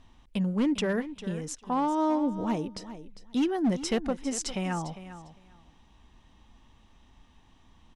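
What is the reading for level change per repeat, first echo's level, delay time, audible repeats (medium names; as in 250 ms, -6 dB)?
-15.5 dB, -13.5 dB, 401 ms, 2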